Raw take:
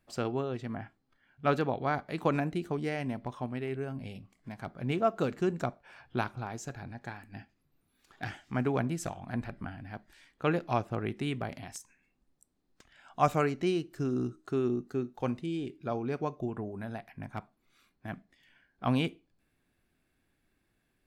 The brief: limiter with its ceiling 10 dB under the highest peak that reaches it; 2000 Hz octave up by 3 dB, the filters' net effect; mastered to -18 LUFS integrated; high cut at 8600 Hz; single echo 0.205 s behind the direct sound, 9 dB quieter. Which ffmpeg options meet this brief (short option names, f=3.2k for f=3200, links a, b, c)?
-af "lowpass=8.6k,equalizer=f=2k:t=o:g=4,alimiter=limit=-21.5dB:level=0:latency=1,aecho=1:1:205:0.355,volume=17dB"